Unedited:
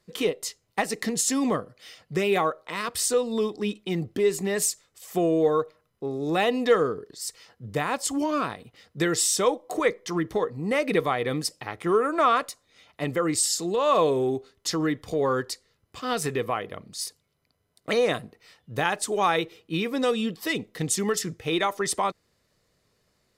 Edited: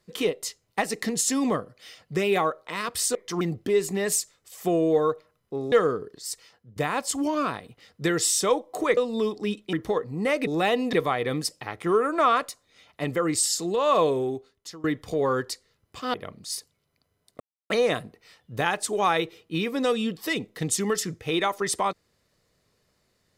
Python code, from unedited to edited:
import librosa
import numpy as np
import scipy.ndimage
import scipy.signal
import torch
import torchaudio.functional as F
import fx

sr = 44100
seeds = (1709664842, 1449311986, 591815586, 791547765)

y = fx.edit(x, sr, fx.swap(start_s=3.15, length_s=0.76, other_s=9.93, other_length_s=0.26),
    fx.move(start_s=6.22, length_s=0.46, to_s=10.93),
    fx.fade_out_to(start_s=7.27, length_s=0.45, floor_db=-16.0),
    fx.fade_out_to(start_s=14.03, length_s=0.81, floor_db=-22.5),
    fx.cut(start_s=16.14, length_s=0.49),
    fx.insert_silence(at_s=17.89, length_s=0.3), tone=tone)